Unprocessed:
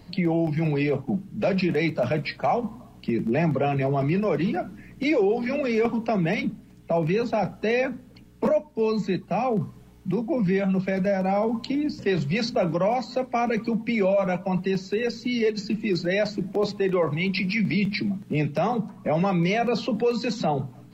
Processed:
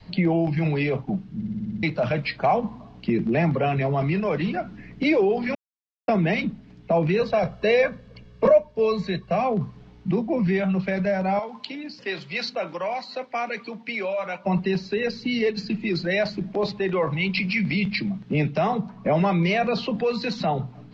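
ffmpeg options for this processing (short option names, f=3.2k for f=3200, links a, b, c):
-filter_complex "[0:a]asettb=1/sr,asplit=3[a][b][c];[a]atrim=end=7.194[d];[b]atrim=start=7.19:end=9.41,asetpts=PTS-STARTPTS,afade=t=in:d=0.004:c=qsin,afade=t=out:st=2.216:d=0.004:c=qsin,aecho=1:1:1.8:0.65,atrim=end_sample=97902[e];[c]atrim=start=9.406[f];[d][e]acrossfade=d=0.004:c1=hsin:c2=qsin[g];[g][f]acrossfade=d=0.004:c1=qsin:c2=hsin,asettb=1/sr,asplit=3[h][i][j];[h]atrim=end=11.394[k];[i]atrim=start=11.39:end=14.45,asetpts=PTS-STARTPTS,afade=t=in:d=0.004:c=qsin,afade=t=out:st=3.056:d=0.004:c=qsin,highpass=f=1.3k:p=1[l];[j]atrim=start=14.446[m];[k][l]acrossfade=d=0.004:c1=hsin:c2=qsin[n];[n][m]acrossfade=d=0.004:c1=qsin:c2=hsin,asplit=11[o][p][q][r][s][t][u][v][w][x][y];[o]atrim=end=1.412[z];[p]atrim=start=1.348:end=1.412[aa];[q]atrim=start=1.348:end=1.412[ab];[r]atrim=start=1.348:end=1.412[ac];[s]atrim=start=1.348:end=1.412[ad];[t]atrim=start=1.348:end=1.412[ae];[u]atrim=start=1.348:end=1.412[af];[v]atrim=start=1.348:end=1.412[ag];[w]atrim=start=1.828:end=5.55,asetpts=PTS-STARTPTS,afade=t=out:st=3.718:d=0.004:c=hsin[ah];[x]atrim=start=5.55:end=6.08,asetpts=PTS-STARTPTS,volume=0[ai];[y]atrim=start=6.08,asetpts=PTS-STARTPTS,afade=t=in:d=0.004:c=hsin[aj];[z][aa]acrossfade=d=0.004:c1=hsin:c2=hsin[ak];[ak][ab]acrossfade=d=0.004:c1=hsin:c2=hsin[al];[al][ac]acrossfade=d=0.004:c1=hsin:c2=hsin[am];[am][ad]acrossfade=d=0.004:c1=hsin:c2=hsin[an];[an][ae]acrossfade=d=0.004:c1=hsin:c2=hsin[ao];[ao][af]acrossfade=d=0.004:c1=hsin:c2=hsin[ap];[ap][ag]acrossfade=d=0.004:c1=hsin:c2=hsin[aq];[ah][ai][aj]concat=n=3:v=0:a=1[ar];[aq][ar]acrossfade=d=0.004:c1=hsin:c2=hsin,adynamicequalizer=threshold=0.0158:dfrequency=320:dqfactor=0.72:tfrequency=320:tqfactor=0.72:attack=5:release=100:ratio=0.375:range=3:mode=cutabove:tftype=bell,lowpass=f=5k:w=0.5412,lowpass=f=5k:w=1.3066,volume=3dB"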